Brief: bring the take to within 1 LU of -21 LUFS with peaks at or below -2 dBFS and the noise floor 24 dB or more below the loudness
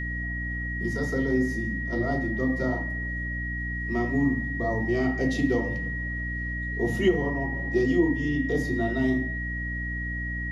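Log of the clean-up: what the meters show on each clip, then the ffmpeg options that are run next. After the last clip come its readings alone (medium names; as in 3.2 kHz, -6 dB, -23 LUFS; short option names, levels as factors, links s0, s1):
hum 60 Hz; highest harmonic 300 Hz; hum level -30 dBFS; steady tone 1.9 kHz; tone level -32 dBFS; loudness -27.0 LUFS; peak level -11.0 dBFS; loudness target -21.0 LUFS
-> -af "bandreject=f=60:t=h:w=4,bandreject=f=120:t=h:w=4,bandreject=f=180:t=h:w=4,bandreject=f=240:t=h:w=4,bandreject=f=300:t=h:w=4"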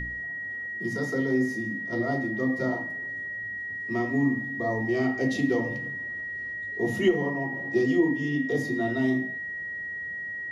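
hum not found; steady tone 1.9 kHz; tone level -32 dBFS
-> -af "bandreject=f=1900:w=30"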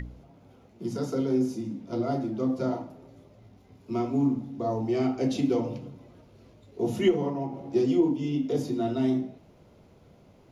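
steady tone not found; loudness -28.0 LUFS; peak level -12.0 dBFS; loudness target -21.0 LUFS
-> -af "volume=2.24"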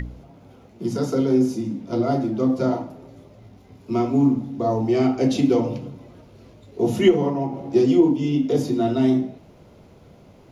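loudness -21.0 LUFS; peak level -5.0 dBFS; noise floor -50 dBFS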